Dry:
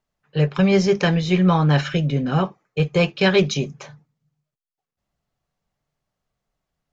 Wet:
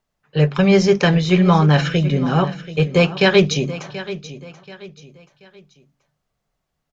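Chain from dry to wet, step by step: de-hum 46.83 Hz, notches 6; on a send: feedback echo 0.732 s, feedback 35%, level -15 dB; on the sum: gain +3.5 dB

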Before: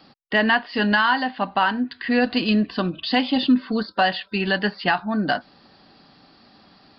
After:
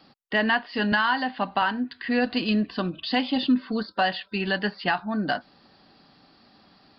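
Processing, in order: 0.92–1.62 three-band squash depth 40%; gain -4 dB

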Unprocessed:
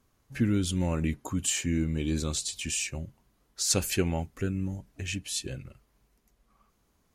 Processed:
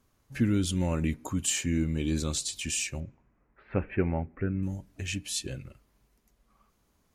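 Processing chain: 3–4.63 steep low-pass 2300 Hz 48 dB/oct; on a send: reverb RT60 0.60 s, pre-delay 3 ms, DRR 21 dB

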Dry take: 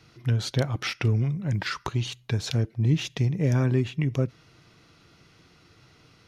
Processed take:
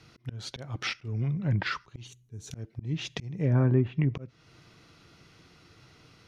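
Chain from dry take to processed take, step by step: auto swell 0.364 s; spectral gain 2.07–2.54, 470–5600 Hz -12 dB; treble ducked by the level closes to 1400 Hz, closed at -20.5 dBFS

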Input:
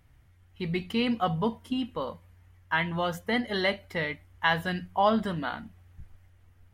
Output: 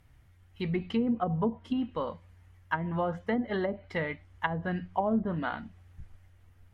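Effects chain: treble ducked by the level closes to 470 Hz, closed at -22 dBFS

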